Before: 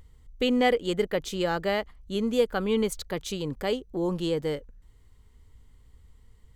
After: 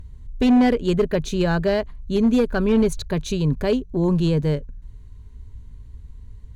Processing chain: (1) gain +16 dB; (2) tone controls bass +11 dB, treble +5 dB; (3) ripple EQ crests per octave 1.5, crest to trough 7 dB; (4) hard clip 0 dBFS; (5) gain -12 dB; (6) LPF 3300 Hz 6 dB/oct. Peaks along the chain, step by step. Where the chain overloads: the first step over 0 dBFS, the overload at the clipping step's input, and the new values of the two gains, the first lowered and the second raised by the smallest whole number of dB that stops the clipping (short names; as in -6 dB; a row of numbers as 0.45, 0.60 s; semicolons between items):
+6.5, +8.0, +7.5, 0.0, -12.0, -12.0 dBFS; step 1, 7.5 dB; step 1 +8 dB, step 5 -4 dB